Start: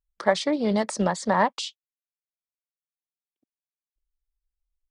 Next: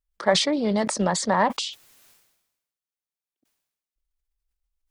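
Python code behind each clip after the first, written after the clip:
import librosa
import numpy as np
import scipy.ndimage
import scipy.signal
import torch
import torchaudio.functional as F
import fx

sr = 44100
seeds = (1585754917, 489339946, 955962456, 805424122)

y = fx.sustainer(x, sr, db_per_s=57.0)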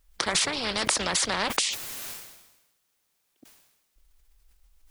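y = fx.spectral_comp(x, sr, ratio=4.0)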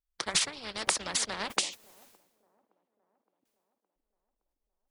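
y = fx.echo_wet_bandpass(x, sr, ms=566, feedback_pct=57, hz=430.0, wet_db=-9.0)
y = fx.upward_expand(y, sr, threshold_db=-39.0, expansion=2.5)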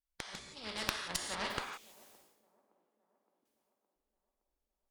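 y = fx.gate_flip(x, sr, shuts_db=-17.0, range_db=-29)
y = fx.rev_gated(y, sr, seeds[0], gate_ms=200, shape='flat', drr_db=0.5)
y = fx.cheby_harmonics(y, sr, harmonics=(4,), levels_db=(-8,), full_scale_db=-7.0)
y = F.gain(torch.from_numpy(y), -4.5).numpy()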